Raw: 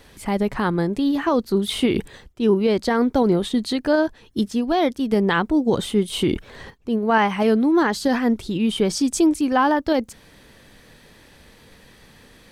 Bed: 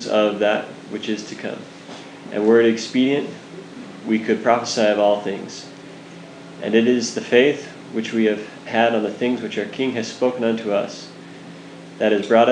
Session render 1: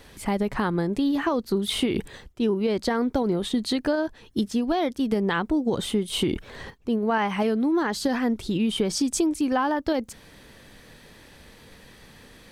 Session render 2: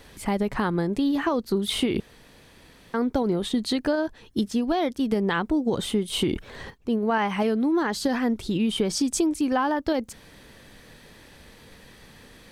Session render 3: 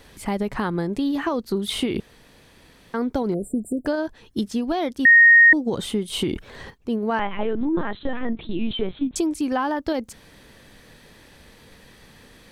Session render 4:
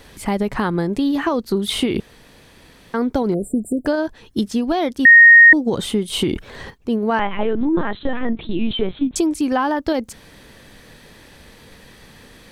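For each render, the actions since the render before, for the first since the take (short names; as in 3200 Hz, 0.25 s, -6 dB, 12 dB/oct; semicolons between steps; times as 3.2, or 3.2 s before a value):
compressor, threshold -20 dBFS, peak gain reduction 8 dB
2–2.94 room tone
3.34–3.86 brick-wall FIR band-stop 730–7100 Hz; 5.05–5.53 bleep 1860 Hz -8 dBFS; 7.19–9.16 LPC vocoder at 8 kHz pitch kept
gain +4.5 dB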